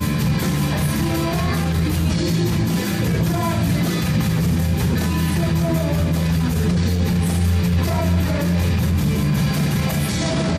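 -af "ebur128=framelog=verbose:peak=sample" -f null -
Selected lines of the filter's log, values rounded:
Integrated loudness:
  I:         -19.5 LUFS
  Threshold: -29.5 LUFS
Loudness range:
  LRA:         0.8 LU
  Threshold: -39.5 LUFS
  LRA low:   -19.9 LUFS
  LRA high:  -19.1 LUFS
Sample peak:
  Peak:       -8.8 dBFS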